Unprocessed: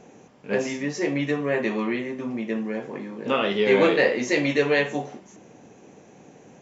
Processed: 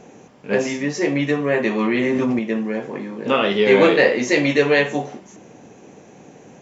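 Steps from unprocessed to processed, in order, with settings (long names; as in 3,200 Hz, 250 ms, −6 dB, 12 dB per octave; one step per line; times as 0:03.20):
0:01.80–0:02.39: envelope flattener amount 100%
level +5 dB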